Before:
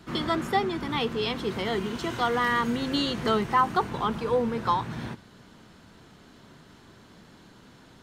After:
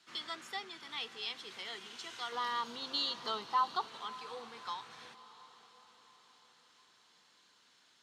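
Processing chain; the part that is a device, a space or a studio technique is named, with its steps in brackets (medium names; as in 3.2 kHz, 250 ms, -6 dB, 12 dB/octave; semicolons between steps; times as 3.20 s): 2.32–3.88 s: graphic EQ 125/250/500/1000/2000/4000/8000 Hz +4/+4/+4/+10/-9/+7/-6 dB; piezo pickup straight into a mixer (low-pass 5.5 kHz 12 dB/octave; differentiator); echo that smears into a reverb 655 ms, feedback 48%, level -16 dB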